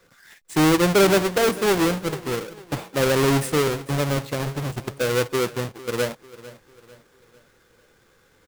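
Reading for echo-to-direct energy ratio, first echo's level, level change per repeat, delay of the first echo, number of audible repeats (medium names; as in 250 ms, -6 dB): -17.0 dB, -18.0 dB, -7.5 dB, 448 ms, 3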